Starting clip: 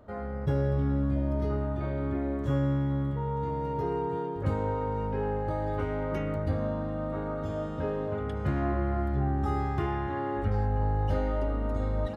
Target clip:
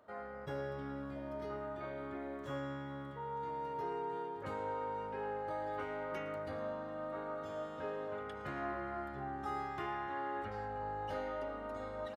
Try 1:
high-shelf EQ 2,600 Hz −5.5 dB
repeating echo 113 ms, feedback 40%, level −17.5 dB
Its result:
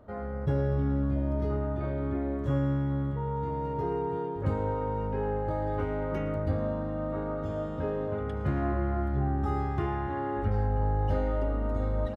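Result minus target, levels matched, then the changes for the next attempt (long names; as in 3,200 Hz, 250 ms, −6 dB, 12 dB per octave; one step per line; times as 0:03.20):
1,000 Hz band −6.0 dB
add first: high-pass filter 1,300 Hz 6 dB per octave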